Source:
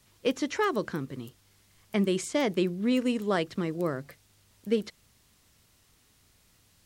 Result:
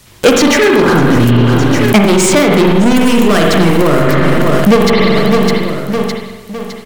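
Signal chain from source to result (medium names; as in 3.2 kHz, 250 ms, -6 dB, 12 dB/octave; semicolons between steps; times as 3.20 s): 0.51–0.92 s: spectral replace 520–1400 Hz; 2.96–4.02 s: treble shelf 4.6 kHz +10 dB; waveshaping leveller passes 5; feedback delay 609 ms, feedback 42%, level -20 dB; spring tank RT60 1.2 s, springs 42/59 ms, chirp 40 ms, DRR -0.5 dB; loudness maximiser +30.5 dB; trim -1 dB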